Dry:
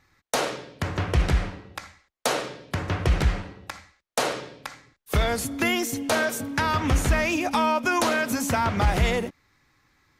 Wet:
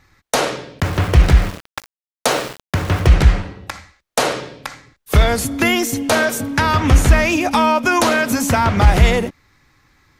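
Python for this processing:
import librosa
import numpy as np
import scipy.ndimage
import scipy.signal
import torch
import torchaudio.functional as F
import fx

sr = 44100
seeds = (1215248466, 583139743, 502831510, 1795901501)

y = fx.low_shelf(x, sr, hz=100.0, db=5.5)
y = fx.sample_gate(y, sr, floor_db=-34.5, at=(0.8, 3.08))
y = y * librosa.db_to_amplitude(7.5)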